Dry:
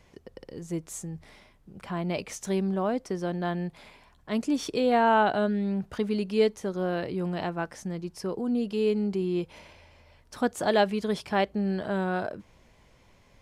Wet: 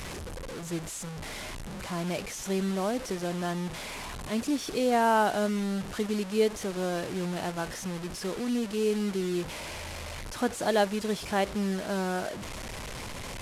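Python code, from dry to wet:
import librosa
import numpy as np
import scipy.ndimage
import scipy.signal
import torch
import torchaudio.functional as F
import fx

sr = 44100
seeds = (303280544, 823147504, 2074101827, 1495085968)

y = fx.delta_mod(x, sr, bps=64000, step_db=-30.5)
y = y * 10.0 ** (-2.0 / 20.0)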